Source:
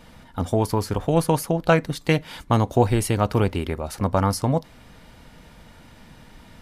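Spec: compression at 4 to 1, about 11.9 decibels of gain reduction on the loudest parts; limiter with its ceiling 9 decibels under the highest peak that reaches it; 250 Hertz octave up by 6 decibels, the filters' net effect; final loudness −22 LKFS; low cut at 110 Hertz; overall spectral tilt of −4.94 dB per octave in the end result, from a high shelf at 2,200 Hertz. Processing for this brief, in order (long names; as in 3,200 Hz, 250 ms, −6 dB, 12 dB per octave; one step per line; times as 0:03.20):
high-pass filter 110 Hz
parametric band 250 Hz +8.5 dB
high-shelf EQ 2,200 Hz +6.5 dB
downward compressor 4 to 1, threshold −24 dBFS
level +8.5 dB
brickwall limiter −8.5 dBFS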